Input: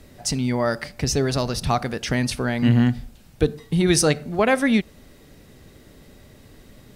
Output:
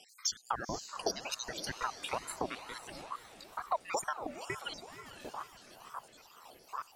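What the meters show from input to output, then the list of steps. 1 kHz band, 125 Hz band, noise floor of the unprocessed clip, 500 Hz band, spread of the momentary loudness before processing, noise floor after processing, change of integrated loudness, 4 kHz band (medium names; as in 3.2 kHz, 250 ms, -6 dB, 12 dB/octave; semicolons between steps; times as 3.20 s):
-8.5 dB, -31.0 dB, -50 dBFS, -18.5 dB, 7 LU, -61 dBFS, -17.5 dB, -11.5 dB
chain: random holes in the spectrogram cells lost 82%; treble shelf 7.9 kHz -10 dB; peak limiter -17.5 dBFS, peak gain reduction 8 dB; compression 4:1, threshold -41 dBFS, peak gain reduction 16 dB; tone controls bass +8 dB, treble +9 dB; echo that smears into a reverb 520 ms, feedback 42%, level -10 dB; ring modulator with a swept carrier 810 Hz, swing 50%, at 2.2 Hz; trim +4.5 dB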